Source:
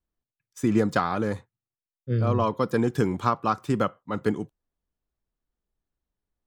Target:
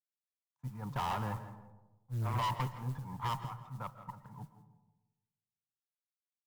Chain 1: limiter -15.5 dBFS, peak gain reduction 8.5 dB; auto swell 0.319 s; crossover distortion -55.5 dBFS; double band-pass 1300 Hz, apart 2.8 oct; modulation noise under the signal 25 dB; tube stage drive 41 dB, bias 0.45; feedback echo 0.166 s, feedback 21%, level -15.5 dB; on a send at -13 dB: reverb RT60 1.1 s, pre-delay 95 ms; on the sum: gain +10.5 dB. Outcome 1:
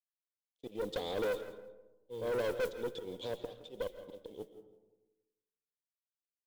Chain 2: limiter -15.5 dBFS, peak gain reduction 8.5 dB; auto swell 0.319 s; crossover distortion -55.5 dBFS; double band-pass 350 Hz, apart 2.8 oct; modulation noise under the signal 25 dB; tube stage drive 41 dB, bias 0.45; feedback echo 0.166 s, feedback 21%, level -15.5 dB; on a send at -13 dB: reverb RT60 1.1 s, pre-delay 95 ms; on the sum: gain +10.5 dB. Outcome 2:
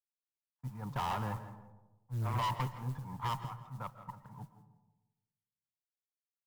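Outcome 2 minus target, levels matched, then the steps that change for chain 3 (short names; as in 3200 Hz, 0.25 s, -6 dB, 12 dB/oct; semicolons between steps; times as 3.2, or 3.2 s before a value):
crossover distortion: distortion +6 dB
change: crossover distortion -61.5 dBFS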